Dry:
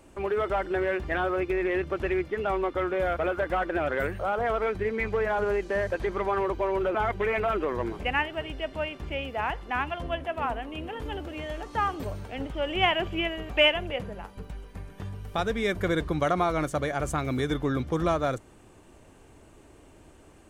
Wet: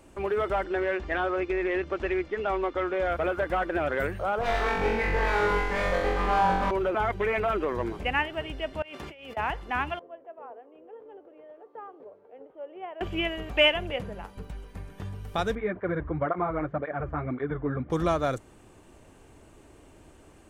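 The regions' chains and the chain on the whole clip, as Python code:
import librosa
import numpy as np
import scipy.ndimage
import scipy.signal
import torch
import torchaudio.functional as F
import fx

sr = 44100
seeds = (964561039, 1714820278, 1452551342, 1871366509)

y = fx.chain(x, sr, fx.lowpass(hz=7300.0, slope=24),
    fx.peak_eq(hz=120.0, db=-11.5, octaves=1.0), at=(0.64, 3.11))
y = fx.chain(y, sr, fx.lower_of_two(delay_ms=4.0),
    fx.high_shelf(hz=6500.0, db=-6.0),
    fx.room_flutter(wall_m=3.7, rt60_s=1.0), at=(4.41, 6.71))
y = fx.chain(y, sr, fx.highpass(hz=390.0, slope=6),
    fx.over_compress(threshold_db=-44.0, ratio=-1.0), at=(8.82, 9.37))
y = fx.chain(y, sr, fx.ladder_bandpass(hz=510.0, resonance_pct=65),
    fx.peak_eq(hz=480.0, db=-4.0, octaves=1.1), at=(9.99, 13.01))
y = fx.chain(y, sr, fx.lowpass(hz=1900.0, slope=24),
    fx.flanger_cancel(hz=1.9, depth_ms=5.8), at=(15.55, 17.9))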